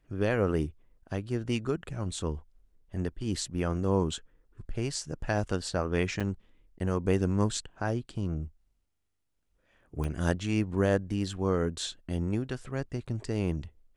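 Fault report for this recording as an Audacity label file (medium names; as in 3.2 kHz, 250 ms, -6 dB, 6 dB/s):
6.200000	6.210000	dropout 6.3 ms
10.040000	10.040000	pop -22 dBFS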